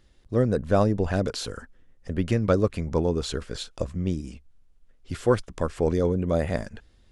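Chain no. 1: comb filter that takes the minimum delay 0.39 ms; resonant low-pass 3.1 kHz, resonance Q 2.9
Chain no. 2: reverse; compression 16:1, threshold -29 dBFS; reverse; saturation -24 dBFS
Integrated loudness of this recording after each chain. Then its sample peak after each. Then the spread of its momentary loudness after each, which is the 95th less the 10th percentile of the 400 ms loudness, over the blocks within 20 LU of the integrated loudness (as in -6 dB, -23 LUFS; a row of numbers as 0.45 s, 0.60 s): -26.0 LUFS, -37.0 LUFS; -8.5 dBFS, -24.5 dBFS; 15 LU, 9 LU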